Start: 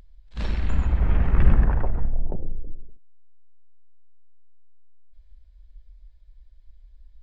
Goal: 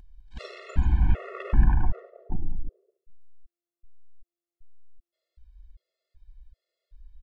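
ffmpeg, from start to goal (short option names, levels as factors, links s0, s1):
-af "aecho=1:1:205:0.119,afftfilt=real='re*gt(sin(2*PI*1.3*pts/sr)*(1-2*mod(floor(b*sr/1024/360),2)),0)':imag='im*gt(sin(2*PI*1.3*pts/sr)*(1-2*mod(floor(b*sr/1024/360),2)),0)':win_size=1024:overlap=0.75"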